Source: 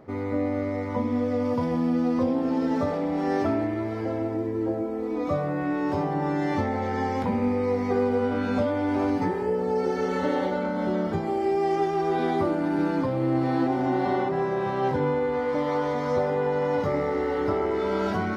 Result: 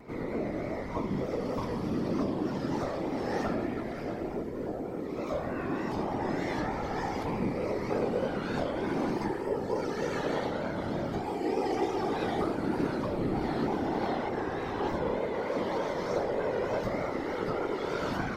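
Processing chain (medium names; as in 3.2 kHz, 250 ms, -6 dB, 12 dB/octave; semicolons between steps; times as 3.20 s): treble shelf 2.4 kHz +9 dB; pre-echo 140 ms -13.5 dB; whisper effect; vibrato 3.3 Hz 74 cents; trim -7 dB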